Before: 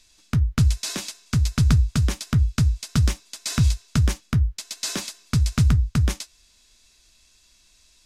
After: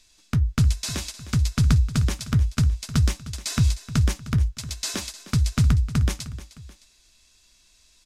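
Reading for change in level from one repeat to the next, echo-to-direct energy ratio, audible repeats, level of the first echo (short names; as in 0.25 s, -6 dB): -7.0 dB, -14.5 dB, 2, -15.5 dB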